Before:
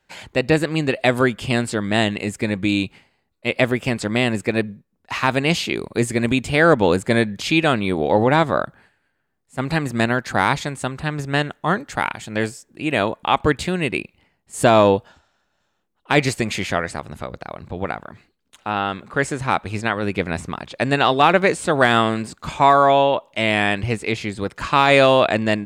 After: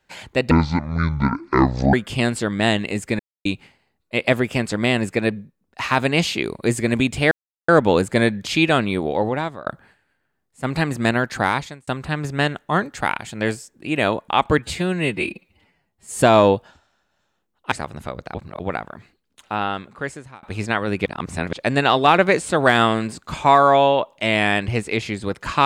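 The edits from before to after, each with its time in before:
0.51–1.25 s: speed 52%
2.51–2.77 s: mute
6.63 s: insert silence 0.37 s
7.80–8.61 s: fade out, to -21.5 dB
10.33–10.82 s: fade out
13.53–14.60 s: stretch 1.5×
16.13–16.87 s: delete
17.50–17.75 s: reverse
18.67–19.58 s: fade out linear
20.21–20.68 s: reverse

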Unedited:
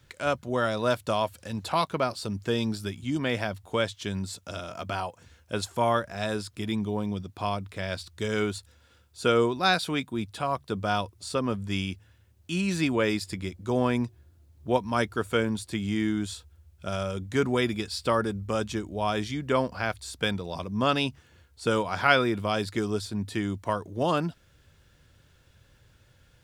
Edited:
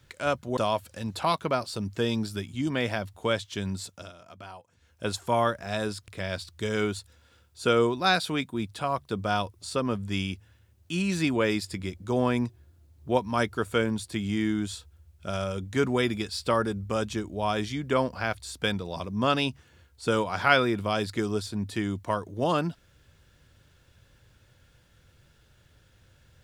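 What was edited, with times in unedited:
0.57–1.06 s: delete
4.35–5.54 s: dip -12.5 dB, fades 0.27 s
6.57–7.67 s: delete

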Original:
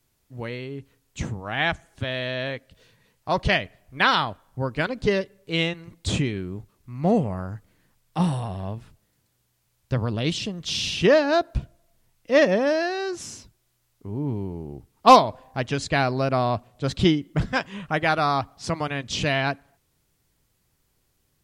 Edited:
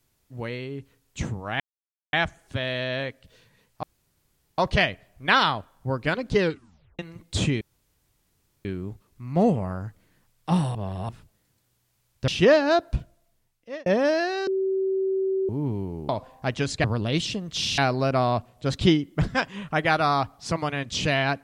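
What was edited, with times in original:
1.60 s: insert silence 0.53 s
3.30 s: insert room tone 0.75 s
5.11 s: tape stop 0.60 s
6.33 s: insert room tone 1.04 s
8.43–8.77 s: reverse
9.96–10.90 s: move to 15.96 s
11.59–12.48 s: fade out
13.09–14.11 s: bleep 383 Hz -21.5 dBFS
14.71–15.21 s: delete

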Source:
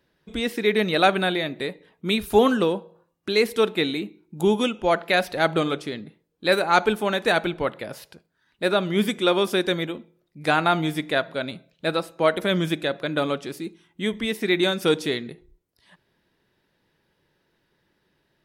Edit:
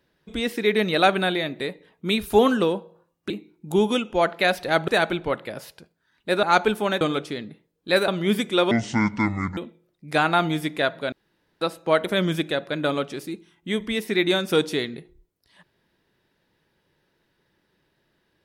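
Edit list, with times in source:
3.30–3.99 s: delete
5.57–6.64 s: swap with 7.22–8.77 s
9.40–9.90 s: speed 58%
11.45–11.94 s: room tone

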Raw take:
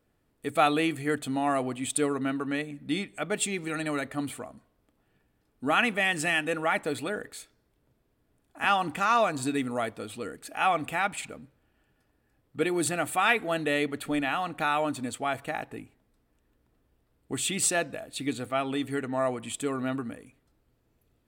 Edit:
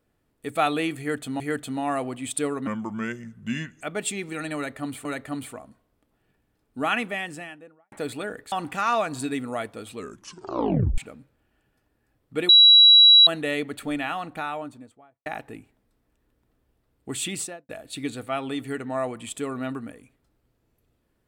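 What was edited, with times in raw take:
0.99–1.40 s: loop, 2 plays
2.26–3.16 s: speed 79%
3.91–4.40 s: loop, 2 plays
5.67–6.78 s: studio fade out
7.38–8.75 s: delete
10.17 s: tape stop 1.04 s
12.72–13.50 s: bleep 3.9 kHz -9 dBFS
14.26–15.49 s: studio fade out
17.51–17.92 s: studio fade out

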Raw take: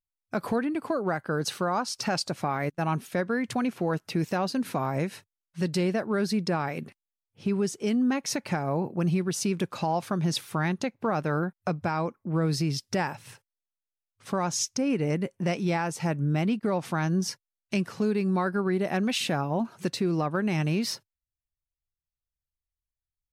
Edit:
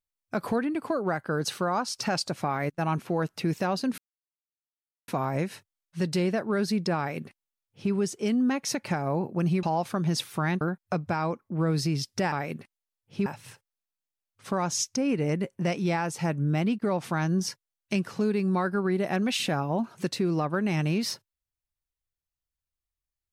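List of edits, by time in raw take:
2.99–3.70 s: delete
4.69 s: insert silence 1.10 s
6.59–7.53 s: copy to 13.07 s
9.24–9.80 s: delete
10.78–11.36 s: delete

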